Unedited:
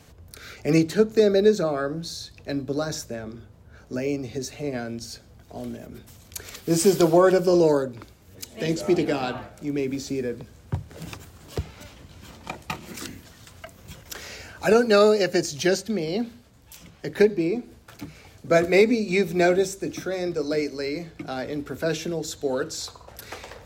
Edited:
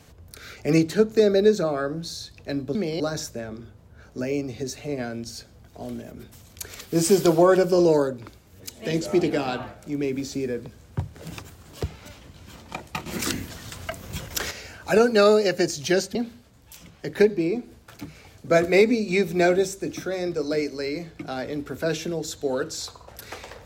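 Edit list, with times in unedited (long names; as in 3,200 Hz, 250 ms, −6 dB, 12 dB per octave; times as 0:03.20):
0:12.81–0:14.26: clip gain +9 dB
0:15.90–0:16.15: move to 0:02.75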